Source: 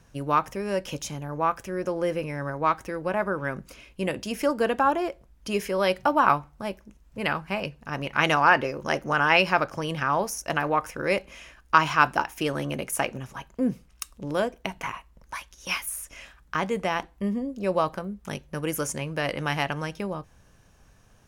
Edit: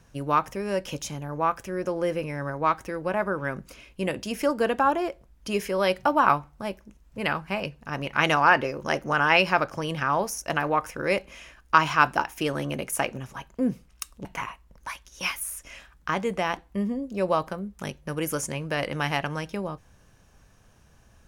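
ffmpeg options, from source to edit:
-filter_complex "[0:a]asplit=2[a][b];[a]atrim=end=14.252[c];[b]atrim=start=14.708[d];[c][d]acrossfade=d=0.004:c1=hsin:c2=hsin"

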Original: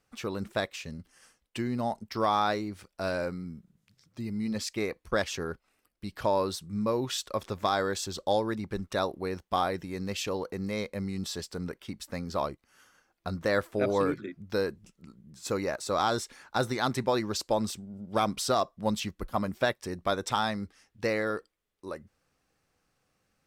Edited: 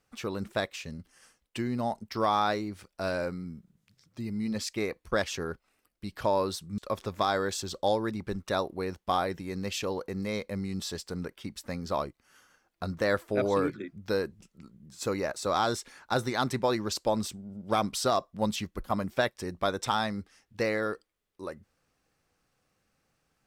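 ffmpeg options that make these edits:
-filter_complex "[0:a]asplit=2[a][b];[a]atrim=end=6.782[c];[b]atrim=start=7.218[d];[c][d]acrossfade=d=0.004:c1=hsin:c2=hsin"

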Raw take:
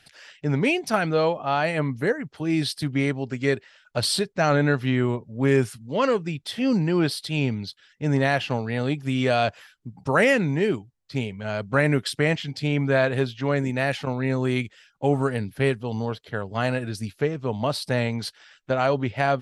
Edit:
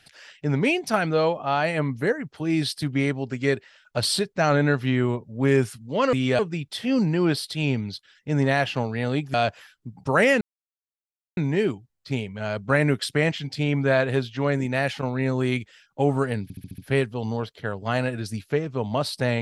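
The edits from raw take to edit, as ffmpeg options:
-filter_complex "[0:a]asplit=10[a][b][c][d][e][f][g][h][i][j];[a]atrim=end=6.132[k];[b]atrim=start=9.078:end=9.342[l];[c]atrim=start=6.128:end=9.082[m];[d]atrim=start=9.338:end=10.41,asetpts=PTS-STARTPTS,afade=t=out:st=1.068:d=0.004:c=hsin,apad=pad_dur=0.96[n];[e]atrim=start=10.41:end=15.542,asetpts=PTS-STARTPTS,afade=t=in:d=0.004:c=hsin[o];[f]atrim=start=15.468:end=15.542[p];[g]atrim=start=15.468:end=15.542[q];[h]atrim=start=15.468:end=15.542[r];[i]atrim=start=15.468:end=15.542[s];[j]atrim=start=15.468[t];[k][l]acrossfade=d=0.004:c1=hsin:c2=hsin[u];[u][m]acrossfade=d=0.004:c1=hsin:c2=hsin[v];[n][o]concat=n=2:v=0:a=1[w];[v][w]acrossfade=d=0.004:c1=hsin:c2=hsin[x];[x][p]acrossfade=d=0.004:c1=hsin:c2=hsin[y];[y][q]acrossfade=d=0.004:c1=hsin:c2=hsin[z];[z][r]acrossfade=d=0.004:c1=hsin:c2=hsin[aa];[aa][s]acrossfade=d=0.004:c1=hsin:c2=hsin[ab];[ab][t]acrossfade=d=0.004:c1=hsin:c2=hsin"

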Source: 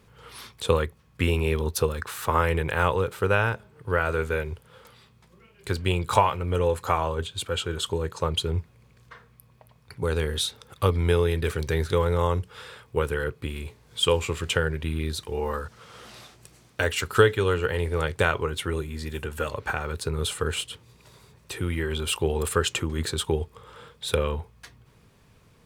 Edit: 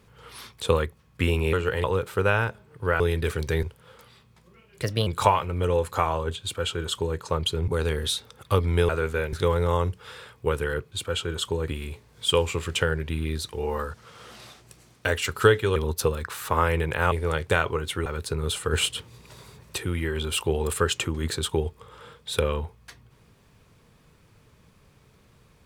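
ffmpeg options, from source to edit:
-filter_complex "[0:a]asplit=17[a][b][c][d][e][f][g][h][i][j][k][l][m][n][o][p][q];[a]atrim=end=1.532[r];[b]atrim=start=17.498:end=17.812[s];[c]atrim=start=2.888:end=4.052[t];[d]atrim=start=11.198:end=11.832[u];[e]atrim=start=4.488:end=5.684[v];[f]atrim=start=5.68:end=5.98,asetpts=PTS-STARTPTS,asetrate=53361,aresample=44100[w];[g]atrim=start=5.976:end=8.592[x];[h]atrim=start=9.988:end=11.202[y];[i]atrim=start=4.048:end=4.492[z];[j]atrim=start=11.828:end=13.422[aa];[k]atrim=start=7.328:end=8.092[ab];[l]atrim=start=13.418:end=17.502[ac];[m]atrim=start=1.528:end=2.892[ad];[n]atrim=start=17.808:end=18.752[ae];[o]atrim=start=19.808:end=20.482[af];[p]atrim=start=20.478:end=21.532,asetpts=PTS-STARTPTS,volume=5.5dB[ag];[q]atrim=start=21.528[ah];[r][s]acrossfade=d=0.004:c1=hsin:c2=hsin[ai];[ai][t]acrossfade=d=0.004:c1=hsin:c2=hsin[aj];[aj][u]acrossfade=d=0.004:c1=hsin:c2=hsin[ak];[ak][v]acrossfade=d=0.004:c1=hsin:c2=hsin[al];[al][w]acrossfade=d=0.004:c1=hsin:c2=hsin[am];[am][x]acrossfade=d=0.004:c1=hsin:c2=hsin[an];[an][y]acrossfade=d=0.004:c1=hsin:c2=hsin[ao];[ao][z]acrossfade=d=0.004:c1=hsin:c2=hsin[ap];[ap][aa]acrossfade=d=0.004:c1=hsin:c2=hsin[aq];[aq][ab]acrossfade=d=0.004:c1=hsin:c2=hsin[ar];[ar][ac]acrossfade=d=0.004:c1=hsin:c2=hsin[as];[as][ad]acrossfade=d=0.004:c1=hsin:c2=hsin[at];[at][ae]acrossfade=d=0.004:c1=hsin:c2=hsin[au];[au][af]acrossfade=d=0.004:c1=hsin:c2=hsin[av];[av][ag]acrossfade=d=0.004:c1=hsin:c2=hsin[aw];[aw][ah]acrossfade=d=0.004:c1=hsin:c2=hsin"

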